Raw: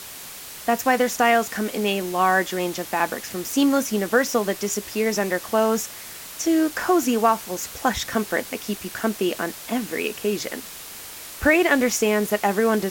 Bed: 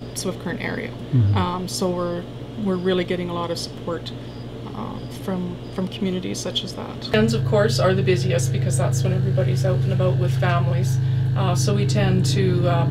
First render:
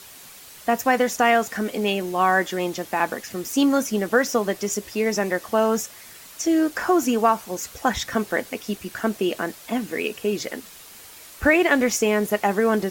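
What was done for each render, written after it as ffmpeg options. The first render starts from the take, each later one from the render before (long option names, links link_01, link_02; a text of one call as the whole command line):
ffmpeg -i in.wav -af "afftdn=noise_reduction=7:noise_floor=-38" out.wav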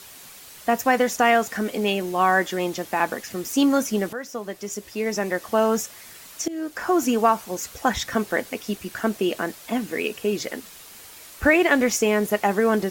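ffmpeg -i in.wav -filter_complex "[0:a]asplit=3[link_01][link_02][link_03];[link_01]atrim=end=4.13,asetpts=PTS-STARTPTS,afade=type=out:start_time=4.126:duration=0.004:curve=hsin:silence=0.177828[link_04];[link_02]atrim=start=4.13:end=6.48,asetpts=PTS-STARTPTS,afade=type=in:duration=1.46:silence=0.177828,afade=type=out:start_time=2.346:duration=0.004:curve=hsin:silence=0.133352[link_05];[link_03]atrim=start=6.48,asetpts=PTS-STARTPTS,afade=type=in:duration=0.56:silence=0.133352[link_06];[link_04][link_05][link_06]concat=n=3:v=0:a=1" out.wav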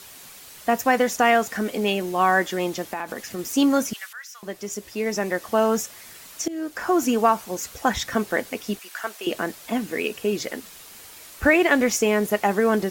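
ffmpeg -i in.wav -filter_complex "[0:a]asettb=1/sr,asplit=3[link_01][link_02][link_03];[link_01]atrim=end=2.824[link_04];[link_02]atrim=start=2.82:end=3.39,asetpts=PTS-STARTPTS,afade=type=in:duration=0.004:curve=qsin,afade=type=out:start_time=0.566:duration=0.004:curve=qsin,acompressor=threshold=-25dB:ratio=6:attack=3.2:release=140:knee=1:detection=peak[link_05];[link_03]atrim=start=3.386[link_06];[link_04][link_05]acrossfade=duration=0.004:curve1=hsin:curve2=qsin[link_07];[link_07][link_06]acrossfade=duration=0.004:curve1=qsin:curve2=hsin,asettb=1/sr,asplit=3[link_08][link_09][link_10];[link_08]atrim=end=3.934[link_11];[link_09]atrim=start=3.93:end=4.43,asetpts=PTS-STARTPTS,afade=type=in:duration=0.004:curve=qsin,afade=type=out:start_time=0.496:duration=0.004:curve=qsin,highpass=frequency=1400:width=0.5412,highpass=frequency=1400:width=1.3066[link_12];[link_10]atrim=start=4.426[link_13];[link_11][link_12]acrossfade=duration=0.004:curve1=hsin:curve2=qsin[link_14];[link_14][link_13]acrossfade=duration=0.004:curve1=qsin:curve2=hsin,asettb=1/sr,asplit=3[link_15][link_16][link_17];[link_15]atrim=end=8.794[link_18];[link_16]atrim=start=8.79:end=9.27,asetpts=PTS-STARTPTS,afade=type=in:duration=0.004:curve=qsin,afade=type=out:start_time=0.476:duration=0.004:curve=qsin,highpass=840[link_19];[link_17]atrim=start=9.266[link_20];[link_18][link_19]acrossfade=duration=0.004:curve1=hsin:curve2=qsin[link_21];[link_21][link_20]acrossfade=duration=0.004:curve1=qsin:curve2=hsin" out.wav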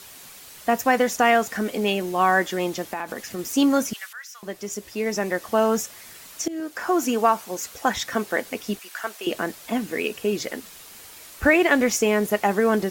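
ffmpeg -i in.wav -filter_complex "[0:a]asettb=1/sr,asplit=3[link_01][link_02][link_03];[link_01]atrim=end=6.604[link_04];[link_02]atrim=start=6.6:end=8.46,asetpts=PTS-STARTPTS,afade=type=in:duration=0.004:curve=qsin,afade=type=out:start_time=1.856:duration=0.004:curve=qsin,lowshelf=frequency=130:gain=-11.5[link_05];[link_03]atrim=start=8.456[link_06];[link_04][link_05]acrossfade=duration=0.004:curve1=hsin:curve2=qsin[link_07];[link_07][link_06]acrossfade=duration=0.004:curve1=qsin:curve2=hsin" out.wav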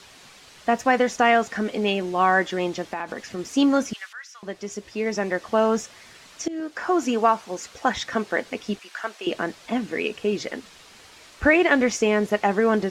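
ffmpeg -i in.wav -af "lowpass=5400" out.wav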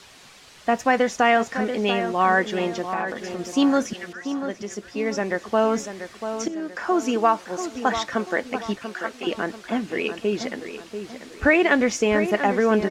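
ffmpeg -i in.wav -filter_complex "[0:a]asplit=2[link_01][link_02];[link_02]adelay=689,lowpass=frequency=2300:poles=1,volume=-9dB,asplit=2[link_03][link_04];[link_04]adelay=689,lowpass=frequency=2300:poles=1,volume=0.41,asplit=2[link_05][link_06];[link_06]adelay=689,lowpass=frequency=2300:poles=1,volume=0.41,asplit=2[link_07][link_08];[link_08]adelay=689,lowpass=frequency=2300:poles=1,volume=0.41,asplit=2[link_09][link_10];[link_10]adelay=689,lowpass=frequency=2300:poles=1,volume=0.41[link_11];[link_01][link_03][link_05][link_07][link_09][link_11]amix=inputs=6:normalize=0" out.wav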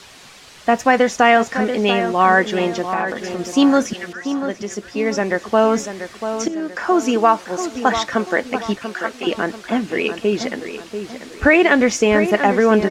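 ffmpeg -i in.wav -af "volume=5.5dB,alimiter=limit=-1dB:level=0:latency=1" out.wav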